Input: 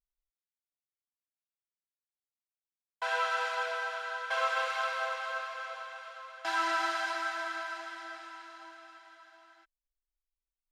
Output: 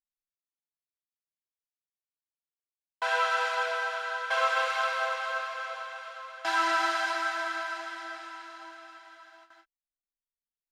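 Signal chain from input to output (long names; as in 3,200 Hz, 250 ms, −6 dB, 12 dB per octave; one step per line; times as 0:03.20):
noise gate with hold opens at −49 dBFS
level +4 dB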